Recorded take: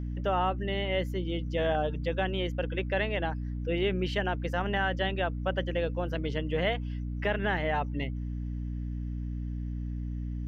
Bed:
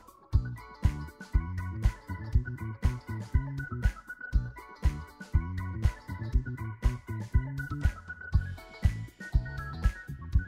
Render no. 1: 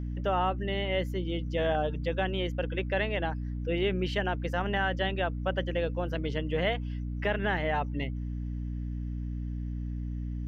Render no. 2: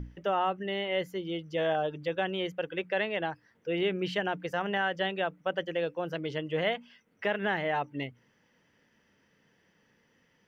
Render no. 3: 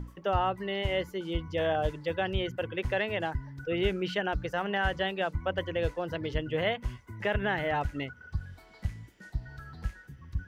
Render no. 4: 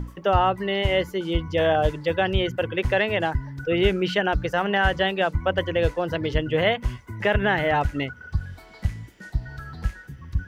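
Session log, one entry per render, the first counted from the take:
no processing that can be heard
mains-hum notches 60/120/180/240/300 Hz
mix in bed −7 dB
level +8 dB

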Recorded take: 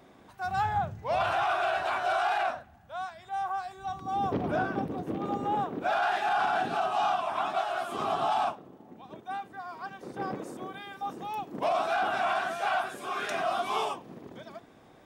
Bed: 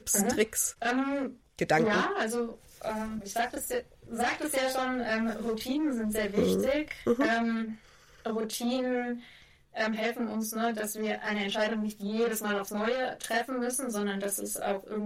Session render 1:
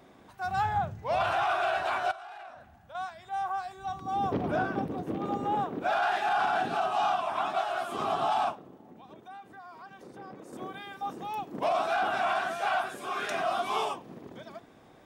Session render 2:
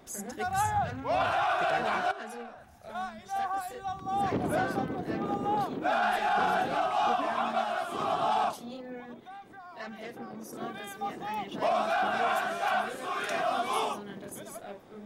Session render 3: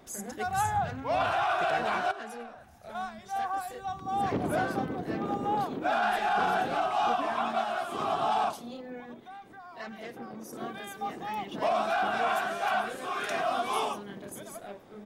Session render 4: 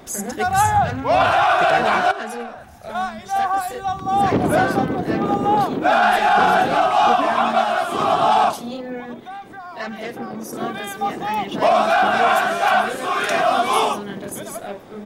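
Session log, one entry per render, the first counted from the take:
0:02.11–0:02.95: downward compressor 5 to 1, threshold −44 dBFS; 0:08.78–0:10.53: downward compressor 2.5 to 1, threshold −47 dBFS
mix in bed −12.5 dB
single-tap delay 104 ms −24 dB
level +12 dB

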